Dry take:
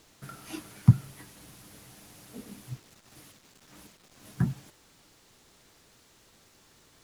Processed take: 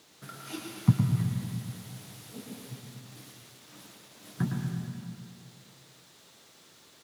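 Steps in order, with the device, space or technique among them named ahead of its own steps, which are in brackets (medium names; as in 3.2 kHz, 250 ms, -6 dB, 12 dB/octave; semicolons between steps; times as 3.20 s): PA in a hall (high-pass 140 Hz 12 dB/octave; peaking EQ 3.7 kHz +4 dB 0.51 oct; delay 111 ms -6 dB; reverberation RT60 2.0 s, pre-delay 118 ms, DRR 3 dB)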